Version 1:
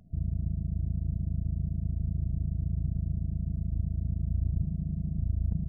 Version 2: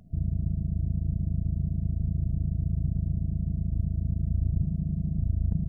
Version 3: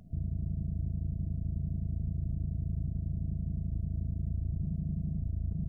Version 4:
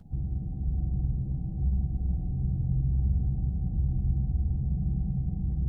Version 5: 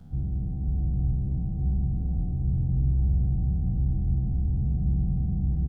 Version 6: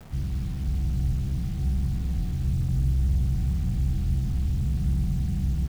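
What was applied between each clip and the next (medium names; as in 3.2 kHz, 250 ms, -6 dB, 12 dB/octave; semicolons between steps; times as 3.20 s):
peaking EQ 64 Hz -2.5 dB; trim +4 dB
peak limiter -26.5 dBFS, peak gain reduction 11.5 dB
frequency axis rescaled in octaves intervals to 114%; reverberation RT60 5.6 s, pre-delay 107 ms, DRR 1 dB; trim +6 dB
spectral sustain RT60 1.78 s; delay 1083 ms -11 dB
word length cut 8-bit, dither none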